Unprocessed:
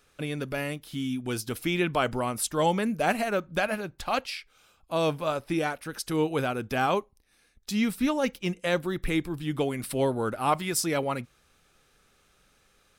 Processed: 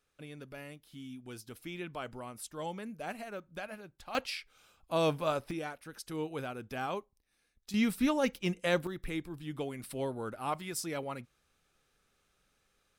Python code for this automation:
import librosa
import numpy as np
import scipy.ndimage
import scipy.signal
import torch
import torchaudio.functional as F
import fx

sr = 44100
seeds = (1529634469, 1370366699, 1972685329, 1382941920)

y = fx.gain(x, sr, db=fx.steps((0.0, -15.0), (4.15, -3.0), (5.51, -11.0), (7.74, -3.0), (8.87, -10.0)))